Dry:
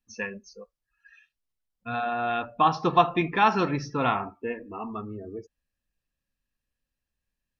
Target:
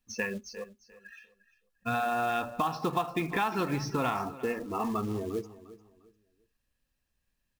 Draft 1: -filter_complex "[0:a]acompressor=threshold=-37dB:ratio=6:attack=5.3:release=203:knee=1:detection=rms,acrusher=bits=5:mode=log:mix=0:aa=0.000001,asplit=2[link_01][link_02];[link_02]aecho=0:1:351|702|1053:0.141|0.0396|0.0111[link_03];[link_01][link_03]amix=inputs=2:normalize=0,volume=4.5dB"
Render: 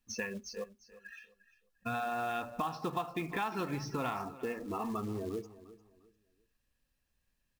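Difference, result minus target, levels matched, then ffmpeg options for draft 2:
downward compressor: peak gain reduction +6 dB
-filter_complex "[0:a]acompressor=threshold=-30dB:ratio=6:attack=5.3:release=203:knee=1:detection=rms,acrusher=bits=5:mode=log:mix=0:aa=0.000001,asplit=2[link_01][link_02];[link_02]aecho=0:1:351|702|1053:0.141|0.0396|0.0111[link_03];[link_01][link_03]amix=inputs=2:normalize=0,volume=4.5dB"

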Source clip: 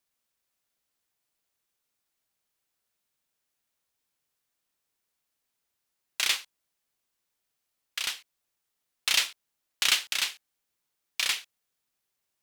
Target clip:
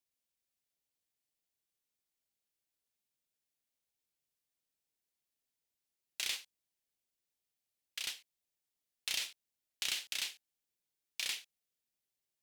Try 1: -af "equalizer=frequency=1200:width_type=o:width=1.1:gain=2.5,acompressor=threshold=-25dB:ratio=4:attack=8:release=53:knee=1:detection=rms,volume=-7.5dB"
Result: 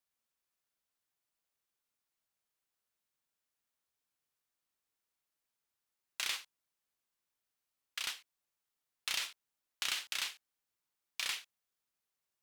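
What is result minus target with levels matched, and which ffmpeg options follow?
1,000 Hz band +8.0 dB
-af "equalizer=frequency=1200:width_type=o:width=1.1:gain=-8.5,acompressor=threshold=-25dB:ratio=4:attack=8:release=53:knee=1:detection=rms,volume=-7.5dB"

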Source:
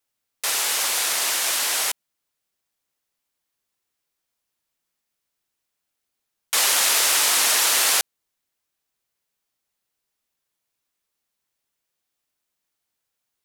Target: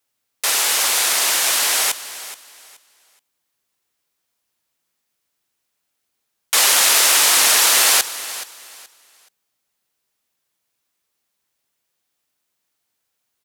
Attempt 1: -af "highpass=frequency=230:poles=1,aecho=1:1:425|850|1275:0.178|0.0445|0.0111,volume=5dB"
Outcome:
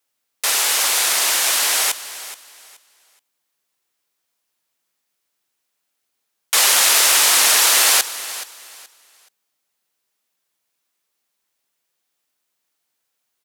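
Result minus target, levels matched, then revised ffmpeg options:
125 Hz band −4.5 dB
-af "highpass=frequency=58:poles=1,aecho=1:1:425|850|1275:0.178|0.0445|0.0111,volume=5dB"

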